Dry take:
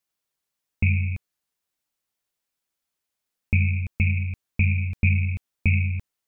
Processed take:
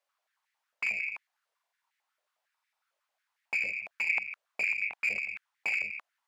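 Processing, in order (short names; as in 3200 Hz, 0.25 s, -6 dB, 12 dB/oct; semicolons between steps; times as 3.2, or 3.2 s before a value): overdrive pedal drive 20 dB, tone 2000 Hz, clips at -9.5 dBFS; stuck buffer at 1.54/2.53, samples 2048, times 6; stepped high-pass 11 Hz 570–1900 Hz; gain -9 dB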